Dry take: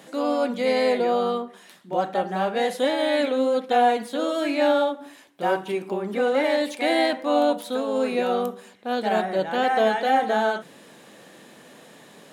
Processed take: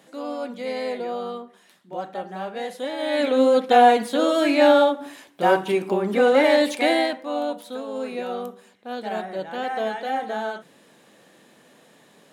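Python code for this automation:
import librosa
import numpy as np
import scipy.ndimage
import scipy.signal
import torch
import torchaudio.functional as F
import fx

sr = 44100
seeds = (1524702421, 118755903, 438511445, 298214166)

y = fx.gain(x, sr, db=fx.line((2.89, -7.0), (3.4, 5.0), (6.78, 5.0), (7.24, -6.0)))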